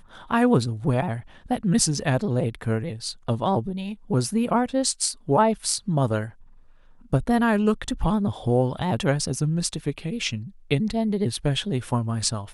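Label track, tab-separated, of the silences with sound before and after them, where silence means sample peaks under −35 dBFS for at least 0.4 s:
6.300000	7.130000	silence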